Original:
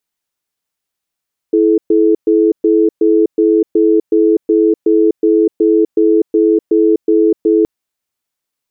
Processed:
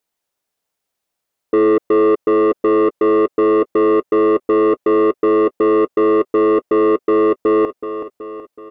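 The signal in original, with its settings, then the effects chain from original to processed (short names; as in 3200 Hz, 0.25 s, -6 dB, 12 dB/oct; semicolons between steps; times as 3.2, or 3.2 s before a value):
cadence 329 Hz, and 430 Hz, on 0.25 s, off 0.12 s, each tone -10 dBFS 6.12 s
bell 580 Hz +7 dB 1.6 oct; soft clip -9.5 dBFS; on a send: feedback echo 0.375 s, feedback 55%, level -11 dB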